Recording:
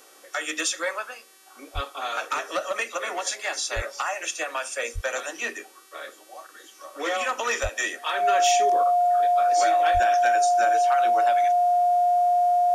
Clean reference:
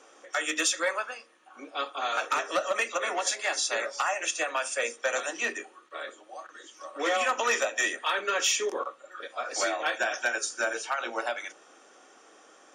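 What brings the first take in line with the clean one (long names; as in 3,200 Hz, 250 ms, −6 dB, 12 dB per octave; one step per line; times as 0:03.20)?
hum removal 383.4 Hz, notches 33
notch filter 710 Hz, Q 30
high-pass at the plosives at 0:01.74/0:03.75/0:04.94/0:07.62/0:09.93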